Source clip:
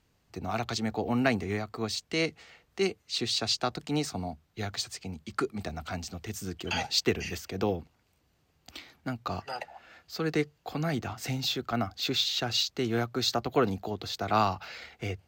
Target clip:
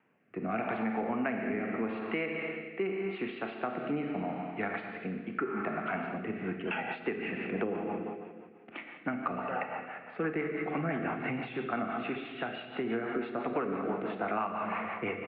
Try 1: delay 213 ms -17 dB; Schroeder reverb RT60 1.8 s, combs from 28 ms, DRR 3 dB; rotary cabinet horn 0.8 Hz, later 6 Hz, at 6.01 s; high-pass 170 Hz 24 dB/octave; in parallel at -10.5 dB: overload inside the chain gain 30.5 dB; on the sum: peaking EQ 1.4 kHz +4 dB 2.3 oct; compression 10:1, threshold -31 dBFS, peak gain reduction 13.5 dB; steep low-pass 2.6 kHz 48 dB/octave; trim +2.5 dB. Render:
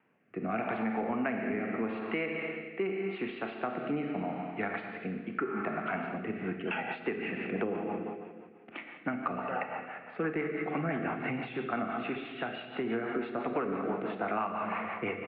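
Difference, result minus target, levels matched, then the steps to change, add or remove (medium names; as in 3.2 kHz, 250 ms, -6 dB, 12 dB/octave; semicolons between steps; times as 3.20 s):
overload inside the chain: distortion -5 dB
change: overload inside the chain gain 38.5 dB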